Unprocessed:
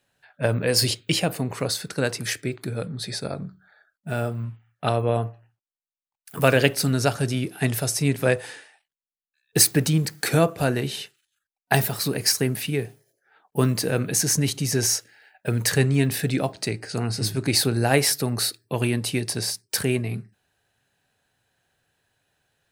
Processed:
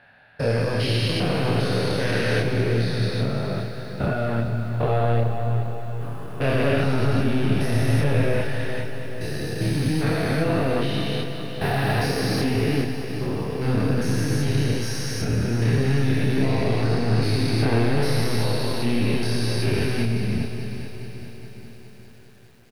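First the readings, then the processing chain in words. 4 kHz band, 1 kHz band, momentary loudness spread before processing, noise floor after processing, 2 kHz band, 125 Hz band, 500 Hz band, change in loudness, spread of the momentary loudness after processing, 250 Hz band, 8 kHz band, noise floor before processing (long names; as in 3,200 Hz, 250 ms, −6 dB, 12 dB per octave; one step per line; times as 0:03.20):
−3.5 dB, +1.5 dB, 11 LU, −42 dBFS, 0.0 dB, +4.0 dB, +1.0 dB, 0.0 dB, 9 LU, +3.0 dB, −13.0 dB, below −85 dBFS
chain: spectrum averaged block by block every 400 ms
in parallel at +1 dB: compressor whose output falls as the input rises −31 dBFS
on the sum: soft clipping −18.5 dBFS, distortion −14 dB
multi-voice chorus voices 6, 0.35 Hz, delay 28 ms, depth 2.4 ms
moving average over 6 samples
on a send: repeating echo 426 ms, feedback 53%, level −11 dB
on the sum: four-comb reverb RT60 2 s, combs from 31 ms, DRR 12 dB
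feedback echo at a low word length 205 ms, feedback 80%, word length 9 bits, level −14 dB
level +6 dB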